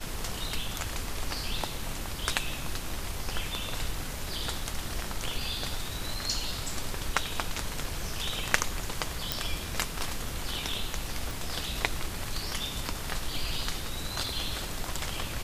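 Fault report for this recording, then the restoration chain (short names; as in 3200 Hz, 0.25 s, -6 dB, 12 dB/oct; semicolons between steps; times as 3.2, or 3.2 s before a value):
9.32 pop
11.31 pop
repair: de-click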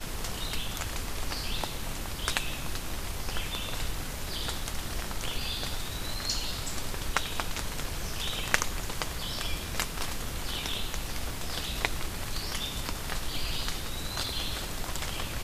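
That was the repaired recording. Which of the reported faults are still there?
none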